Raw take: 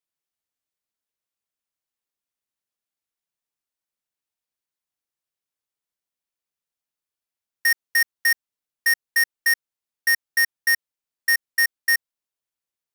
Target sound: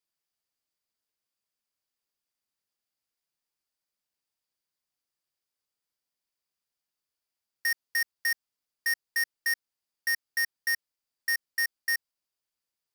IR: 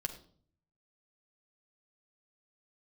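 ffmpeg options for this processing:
-af "equalizer=frequency=4800:width=7.6:gain=8.5,alimiter=limit=-23.5dB:level=0:latency=1:release=23"

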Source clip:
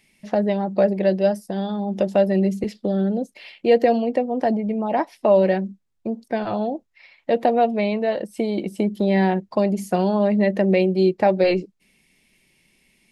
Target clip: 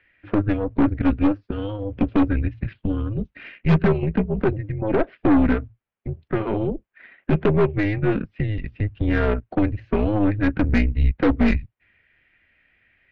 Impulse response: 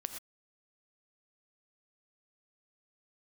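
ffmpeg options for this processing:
-af "highpass=160,highpass=frequency=300:width_type=q:width=0.5412,highpass=frequency=300:width_type=q:width=1.307,lowpass=frequency=3100:width_type=q:width=0.5176,lowpass=frequency=3100:width_type=q:width=0.7071,lowpass=frequency=3100:width_type=q:width=1.932,afreqshift=-310,aeval=exprs='0.531*(cos(1*acos(clip(val(0)/0.531,-1,1)))-cos(1*PI/2))+0.075*(cos(3*acos(clip(val(0)/0.531,-1,1)))-cos(3*PI/2))+0.0841*(cos(5*acos(clip(val(0)/0.531,-1,1)))-cos(5*PI/2))+0.0531*(cos(8*acos(clip(val(0)/0.531,-1,1)))-cos(8*PI/2))':channel_layout=same"

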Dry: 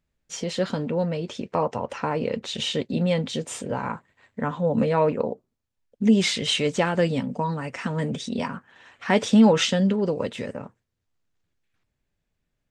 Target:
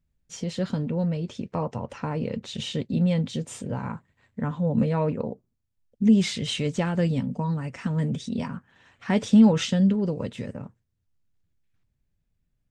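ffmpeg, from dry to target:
ffmpeg -i in.wav -af "bass=frequency=250:gain=12,treble=frequency=4000:gain=2,volume=-7dB" out.wav

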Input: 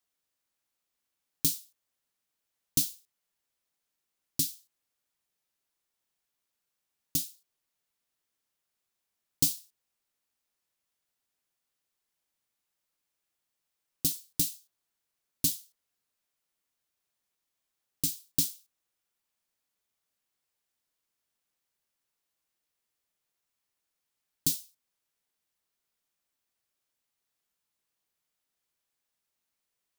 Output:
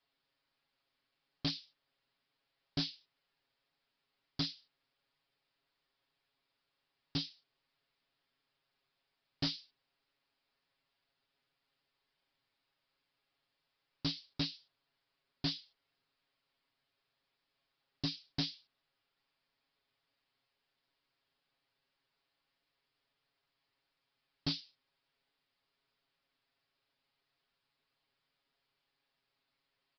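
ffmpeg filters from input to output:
ffmpeg -i in.wav -af "aecho=1:1:7.3:0.95,aresample=11025,asoftclip=type=tanh:threshold=-32.5dB,aresample=44100,volume=3dB" out.wav

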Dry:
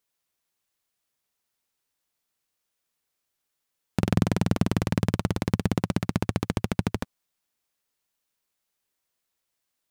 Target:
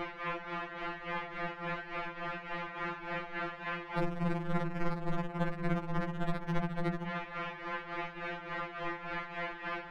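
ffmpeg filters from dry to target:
ffmpeg -i in.wav -af "aeval=exprs='val(0)+0.5*0.0708*sgn(val(0))':channel_layout=same,acompressor=threshold=-29dB:ratio=1.5,lowpass=frequency=2100:width=0.5412,lowpass=frequency=2100:width=1.3066,afreqshift=-59,bandreject=frequency=60:width_type=h:width=6,bandreject=frequency=120:width_type=h:width=6,bandreject=frequency=180:width_type=h:width=6,acontrast=56,asoftclip=type=hard:threshold=-18dB,tremolo=f=3.5:d=0.71,afftfilt=real='re*2.83*eq(mod(b,8),0)':imag='im*2.83*eq(mod(b,8),0)':win_size=2048:overlap=0.75" out.wav

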